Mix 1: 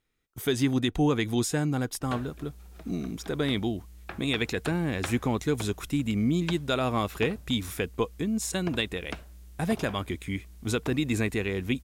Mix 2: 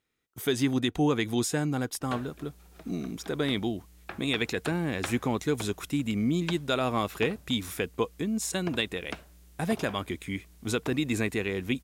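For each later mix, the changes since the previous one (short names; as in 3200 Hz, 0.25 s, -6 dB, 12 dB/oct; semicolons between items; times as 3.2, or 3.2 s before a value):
master: add HPF 130 Hz 6 dB/oct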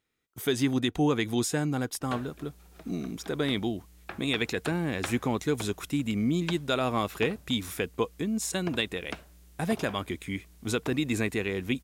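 none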